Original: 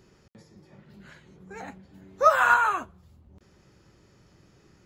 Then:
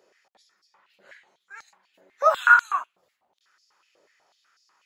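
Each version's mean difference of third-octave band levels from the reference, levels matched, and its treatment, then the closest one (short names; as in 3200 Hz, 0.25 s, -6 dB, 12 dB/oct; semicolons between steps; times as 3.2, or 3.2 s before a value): 8.0 dB: stepped high-pass 8.1 Hz 550–4900 Hz; gain -4.5 dB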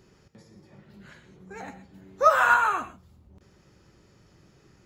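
1.0 dB: non-linear reverb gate 0.15 s rising, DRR 11.5 dB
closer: second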